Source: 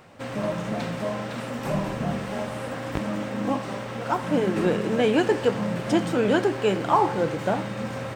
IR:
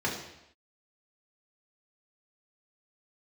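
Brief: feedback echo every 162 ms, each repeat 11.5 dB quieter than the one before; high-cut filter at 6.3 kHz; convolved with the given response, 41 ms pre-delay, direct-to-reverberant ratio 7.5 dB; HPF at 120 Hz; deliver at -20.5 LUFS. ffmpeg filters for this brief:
-filter_complex "[0:a]highpass=120,lowpass=6300,aecho=1:1:162|324|486:0.266|0.0718|0.0194,asplit=2[s0][s1];[1:a]atrim=start_sample=2205,adelay=41[s2];[s1][s2]afir=irnorm=-1:irlink=0,volume=0.15[s3];[s0][s3]amix=inputs=2:normalize=0,volume=1.5"

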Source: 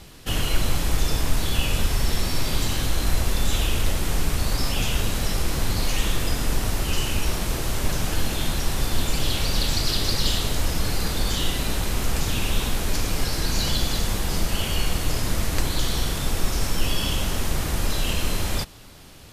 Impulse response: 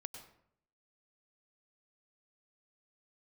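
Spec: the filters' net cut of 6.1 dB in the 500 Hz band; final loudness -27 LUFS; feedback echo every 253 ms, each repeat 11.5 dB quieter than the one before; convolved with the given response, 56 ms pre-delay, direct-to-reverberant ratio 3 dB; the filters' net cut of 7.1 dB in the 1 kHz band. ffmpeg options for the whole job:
-filter_complex "[0:a]equalizer=f=500:t=o:g=-6,equalizer=f=1000:t=o:g=-7.5,aecho=1:1:253|506|759:0.266|0.0718|0.0194,asplit=2[s0][s1];[1:a]atrim=start_sample=2205,adelay=56[s2];[s1][s2]afir=irnorm=-1:irlink=0,volume=1.06[s3];[s0][s3]amix=inputs=2:normalize=0,volume=0.708"

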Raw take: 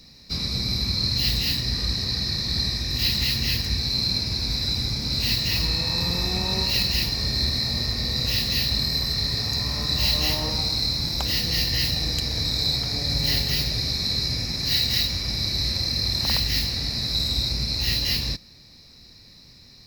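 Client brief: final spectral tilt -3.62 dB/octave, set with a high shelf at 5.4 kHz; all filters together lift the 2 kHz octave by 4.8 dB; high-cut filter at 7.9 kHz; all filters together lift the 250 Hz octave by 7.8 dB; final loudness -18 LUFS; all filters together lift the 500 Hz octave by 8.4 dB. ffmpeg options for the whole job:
-af "lowpass=7900,equalizer=f=250:t=o:g=8.5,equalizer=f=500:t=o:g=7.5,equalizer=f=2000:t=o:g=4.5,highshelf=f=5400:g=5.5,volume=1.26"

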